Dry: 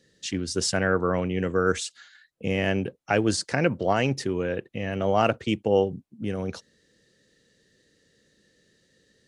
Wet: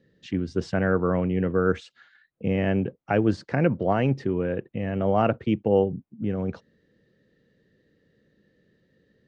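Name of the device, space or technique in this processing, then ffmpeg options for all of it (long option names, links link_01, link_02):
phone in a pocket: -af "lowpass=3200,equalizer=frequency=160:width_type=o:width=1.8:gain=4,highshelf=frequency=2200:gain=-9"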